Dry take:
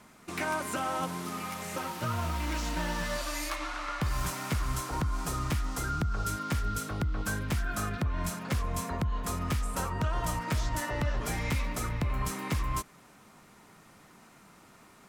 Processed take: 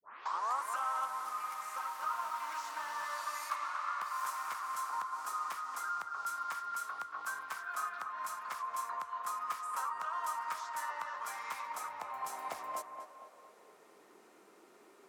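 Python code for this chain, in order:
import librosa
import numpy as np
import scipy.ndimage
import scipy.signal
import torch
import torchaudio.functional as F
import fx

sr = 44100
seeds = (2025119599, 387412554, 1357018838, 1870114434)

p1 = fx.tape_start_head(x, sr, length_s=0.65)
p2 = fx.dynamic_eq(p1, sr, hz=2900.0, q=0.96, threshold_db=-51.0, ratio=4.0, max_db=-5)
p3 = fx.filter_sweep_highpass(p2, sr, from_hz=1100.0, to_hz=380.0, start_s=11.39, end_s=14.07, q=3.9)
p4 = p3 + fx.echo_tape(p3, sr, ms=233, feedback_pct=54, wet_db=-5.5, lp_hz=1800.0, drive_db=15.0, wow_cents=14, dry=0)
y = p4 * 10.0 ** (-8.0 / 20.0)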